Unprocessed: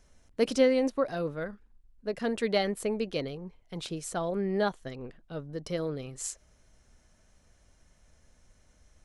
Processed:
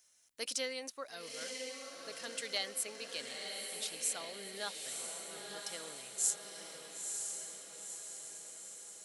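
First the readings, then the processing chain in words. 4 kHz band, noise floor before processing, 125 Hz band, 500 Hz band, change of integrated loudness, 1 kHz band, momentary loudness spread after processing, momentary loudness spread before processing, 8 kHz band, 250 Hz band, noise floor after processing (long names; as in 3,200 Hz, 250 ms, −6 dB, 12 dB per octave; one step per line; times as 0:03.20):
+1.0 dB, −64 dBFS, −25.5 dB, −16.0 dB, −8.5 dB, −11.5 dB, 10 LU, 17 LU, +7.0 dB, −22.5 dB, −57 dBFS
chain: first difference
feedback delay with all-pass diffusion 965 ms, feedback 60%, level −4 dB
level +4.5 dB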